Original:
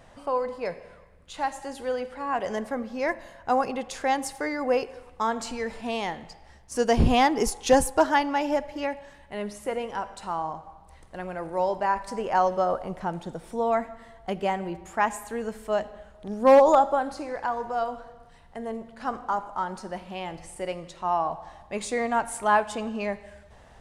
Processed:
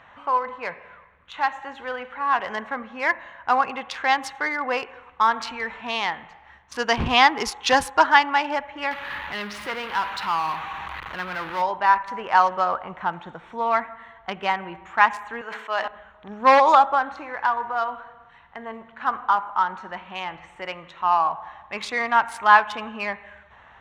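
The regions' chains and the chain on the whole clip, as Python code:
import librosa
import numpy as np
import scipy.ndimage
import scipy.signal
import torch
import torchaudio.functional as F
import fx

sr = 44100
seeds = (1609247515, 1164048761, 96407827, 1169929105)

y = fx.chain(x, sr, fx.zero_step(step_db=-31.5),
    fx.dynamic_eq(hz=670.0, q=1.3, threshold_db=-40.0, ratio=4.0, max_db=-5), at=(8.91, 11.62))
y = fx.chain(y, sr, fx.highpass(hz=320.0, slope=12),
    fx.low_shelf(hz=470.0, db=-5.0),
    fx.sustainer(db_per_s=56.0), at=(15.41, 15.88))
y = fx.wiener(y, sr, points=9)
y = scipy.signal.sosfilt(scipy.signal.butter(2, 50.0, 'highpass', fs=sr, output='sos'), y)
y = fx.band_shelf(y, sr, hz=2200.0, db=15.5, octaves=3.0)
y = y * librosa.db_to_amplitude(-5.0)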